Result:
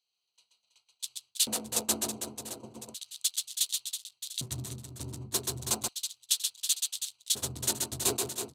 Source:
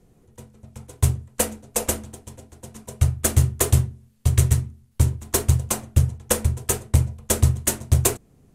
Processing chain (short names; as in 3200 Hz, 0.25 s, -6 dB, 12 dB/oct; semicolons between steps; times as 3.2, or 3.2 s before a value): Wiener smoothing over 25 samples; ten-band EQ 250 Hz -11 dB, 500 Hz -7 dB, 2000 Hz -5 dB, 4000 Hz +11 dB; reverse; compressor 12:1, threshold -28 dBFS, peak gain reduction 16.5 dB; reverse; reverse bouncing-ball echo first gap 0.13 s, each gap 1.5×, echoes 5; LFO high-pass square 0.34 Hz 260–3500 Hz; gain +2.5 dB